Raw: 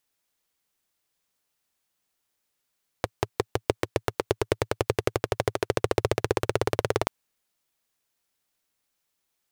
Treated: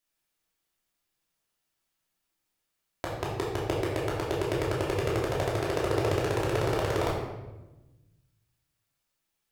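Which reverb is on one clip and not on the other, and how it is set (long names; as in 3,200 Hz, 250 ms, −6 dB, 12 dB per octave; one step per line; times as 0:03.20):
rectangular room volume 540 cubic metres, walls mixed, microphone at 2.9 metres
level −8.5 dB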